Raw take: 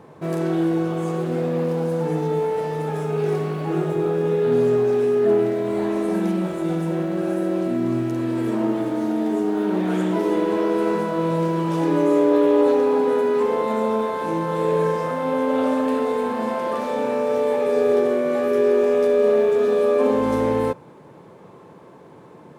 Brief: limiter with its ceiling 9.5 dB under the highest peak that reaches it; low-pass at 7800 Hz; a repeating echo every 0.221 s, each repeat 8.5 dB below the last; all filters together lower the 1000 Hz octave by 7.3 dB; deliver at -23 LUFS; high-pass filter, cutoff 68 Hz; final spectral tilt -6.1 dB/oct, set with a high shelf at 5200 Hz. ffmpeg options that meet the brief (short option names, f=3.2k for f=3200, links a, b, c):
-af "highpass=68,lowpass=7.8k,equalizer=f=1k:t=o:g=-8.5,highshelf=f=5.2k:g=-3.5,alimiter=limit=-18.5dB:level=0:latency=1,aecho=1:1:221|442|663|884:0.376|0.143|0.0543|0.0206,volume=2.5dB"